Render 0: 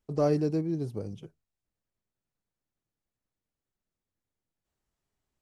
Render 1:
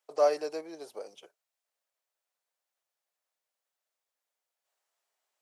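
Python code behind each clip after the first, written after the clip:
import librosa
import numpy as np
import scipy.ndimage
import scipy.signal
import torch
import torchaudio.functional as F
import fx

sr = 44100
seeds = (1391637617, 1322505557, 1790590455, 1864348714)

y = scipy.signal.sosfilt(scipy.signal.cheby1(3, 1.0, 590.0, 'highpass', fs=sr, output='sos'), x)
y = y * librosa.db_to_amplitude(5.0)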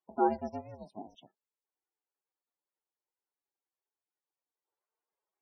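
y = fx.spec_topn(x, sr, count=16)
y = y * np.sin(2.0 * np.pi * 220.0 * np.arange(len(y)) / sr)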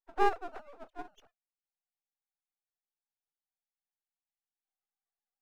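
y = fx.sine_speech(x, sr)
y = np.maximum(y, 0.0)
y = y * librosa.db_to_amplitude(4.0)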